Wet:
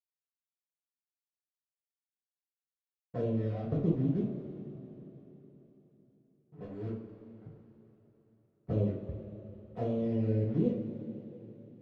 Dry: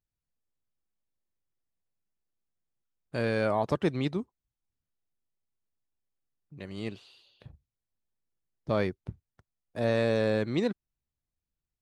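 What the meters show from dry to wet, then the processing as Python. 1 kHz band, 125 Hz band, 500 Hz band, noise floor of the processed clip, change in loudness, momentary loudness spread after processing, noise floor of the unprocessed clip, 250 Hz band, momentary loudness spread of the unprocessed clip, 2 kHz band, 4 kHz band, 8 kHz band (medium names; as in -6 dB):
-13.0 dB, +2.5 dB, -6.5 dB, under -85 dBFS, -4.0 dB, 21 LU, under -85 dBFS, 0.0 dB, 19 LU, under -20 dB, under -20 dB, no reading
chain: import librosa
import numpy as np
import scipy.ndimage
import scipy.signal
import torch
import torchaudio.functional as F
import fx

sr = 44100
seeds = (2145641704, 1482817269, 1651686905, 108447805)

y = scipy.signal.sosfilt(scipy.signal.butter(4, 44.0, 'highpass', fs=sr, output='sos'), x)
y = fx.hum_notches(y, sr, base_hz=60, count=5)
y = fx.dereverb_blind(y, sr, rt60_s=0.8)
y = scipy.signal.sosfilt(scipy.signal.cheby1(3, 1.0, [650.0, 7700.0], 'bandstop', fs=sr, output='sos'), y)
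y = fx.env_lowpass_down(y, sr, base_hz=310.0, full_db=-27.5)
y = fx.peak_eq(y, sr, hz=2400.0, db=10.5, octaves=1.3)
y = fx.leveller(y, sr, passes=1)
y = np.sign(y) * np.maximum(np.abs(y) - 10.0 ** (-50.0 / 20.0), 0.0)
y = fx.env_flanger(y, sr, rest_ms=10.4, full_db=-26.5)
y = fx.air_absorb(y, sr, metres=160.0)
y = fx.rev_double_slope(y, sr, seeds[0], early_s=0.4, late_s=3.9, knee_db=-16, drr_db=-7.0)
y = y * librosa.db_to_amplitude(-5.0)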